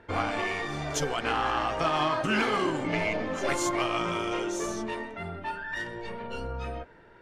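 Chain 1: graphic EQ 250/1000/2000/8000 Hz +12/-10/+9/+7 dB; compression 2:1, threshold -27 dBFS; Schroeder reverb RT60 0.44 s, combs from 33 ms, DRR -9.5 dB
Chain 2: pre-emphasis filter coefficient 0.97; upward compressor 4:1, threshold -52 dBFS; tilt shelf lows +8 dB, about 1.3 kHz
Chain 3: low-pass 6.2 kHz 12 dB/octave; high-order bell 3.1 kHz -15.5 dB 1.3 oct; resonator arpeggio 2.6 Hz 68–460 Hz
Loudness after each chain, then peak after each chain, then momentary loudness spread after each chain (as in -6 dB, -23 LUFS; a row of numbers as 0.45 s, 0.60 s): -18.5 LUFS, -44.5 LUFS, -41.0 LUFS; -2.5 dBFS, -28.5 dBFS, -25.0 dBFS; 9 LU, 12 LU, 13 LU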